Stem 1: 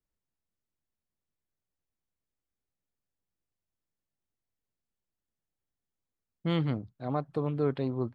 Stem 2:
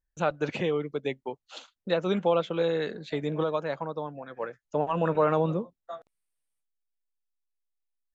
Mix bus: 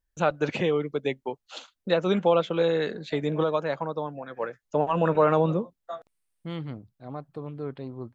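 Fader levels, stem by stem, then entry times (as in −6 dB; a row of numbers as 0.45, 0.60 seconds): −6.0, +3.0 decibels; 0.00, 0.00 seconds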